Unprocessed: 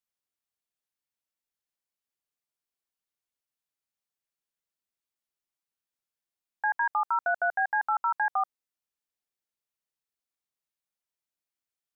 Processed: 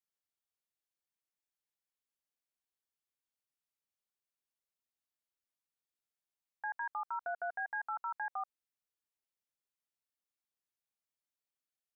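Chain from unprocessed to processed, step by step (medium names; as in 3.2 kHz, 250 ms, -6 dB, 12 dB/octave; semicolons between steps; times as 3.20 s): 7.07–7.99 s: comb 4.3 ms, depth 58%; peak limiter -25.5 dBFS, peak gain reduction 9 dB; trim -5.5 dB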